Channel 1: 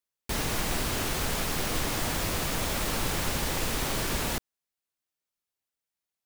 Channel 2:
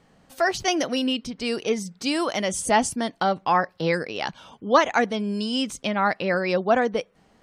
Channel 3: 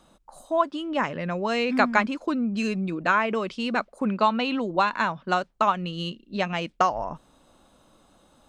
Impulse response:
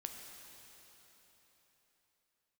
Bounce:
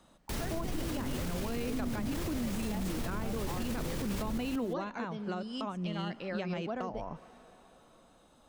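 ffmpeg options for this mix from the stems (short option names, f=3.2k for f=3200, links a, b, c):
-filter_complex "[0:a]volume=-1.5dB,asplit=2[a][b];[b]volume=-7dB[c];[1:a]volume=-14.5dB,asplit=2[d][e];[e]volume=-10dB[f];[2:a]asoftclip=type=hard:threshold=-9.5dB,volume=-5dB,asplit=2[g][h];[h]volume=-19dB[i];[3:a]atrim=start_sample=2205[j];[f][i]amix=inputs=2:normalize=0[k];[k][j]afir=irnorm=-1:irlink=0[l];[c]aecho=0:1:177|354|531:1|0.16|0.0256[m];[a][d][g][l][m]amix=inputs=5:normalize=0,acrossover=split=420[n][o];[o]acompressor=threshold=-37dB:ratio=10[p];[n][p]amix=inputs=2:normalize=0,alimiter=level_in=2.5dB:limit=-24dB:level=0:latency=1:release=20,volume=-2.5dB"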